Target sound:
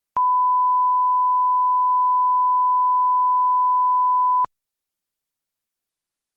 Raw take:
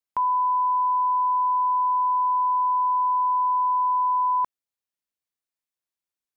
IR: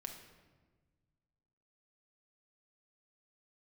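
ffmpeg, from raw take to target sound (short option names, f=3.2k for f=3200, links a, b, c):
-filter_complex "[0:a]bass=f=250:g=3,treble=f=4k:g=3,asplit=3[a][b][c];[a]afade=t=out:st=0.89:d=0.02[d];[b]bandreject=f=1.1k:w=18,afade=t=in:st=0.89:d=0.02,afade=t=out:st=1.89:d=0.02[e];[c]afade=t=in:st=1.89:d=0.02[f];[d][e][f]amix=inputs=3:normalize=0,volume=4dB" -ar 48000 -c:a libopus -b:a 32k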